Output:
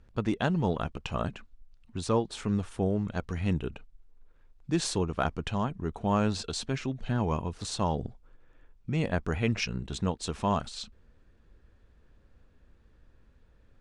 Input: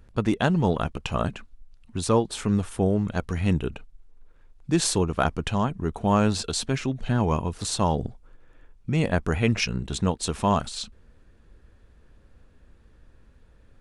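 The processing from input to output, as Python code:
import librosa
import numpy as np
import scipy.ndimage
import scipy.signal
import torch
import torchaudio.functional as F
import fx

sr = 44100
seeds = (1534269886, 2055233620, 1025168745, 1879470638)

y = scipy.signal.sosfilt(scipy.signal.butter(2, 7400.0, 'lowpass', fs=sr, output='sos'), x)
y = y * 10.0 ** (-5.5 / 20.0)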